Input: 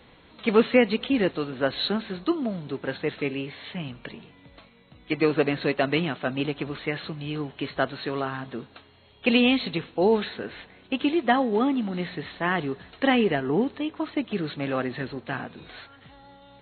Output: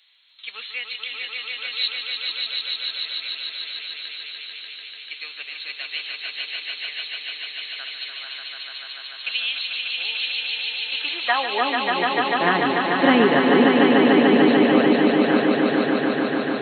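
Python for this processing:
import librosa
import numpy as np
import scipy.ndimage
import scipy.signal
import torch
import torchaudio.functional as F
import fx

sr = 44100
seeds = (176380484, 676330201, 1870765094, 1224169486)

y = fx.filter_sweep_highpass(x, sr, from_hz=3700.0, to_hz=230.0, start_s=10.46, end_s=12.37, q=1.1)
y = fx.echo_swell(y, sr, ms=147, loudest=5, wet_db=-4)
y = F.gain(torch.from_numpy(y), 3.0).numpy()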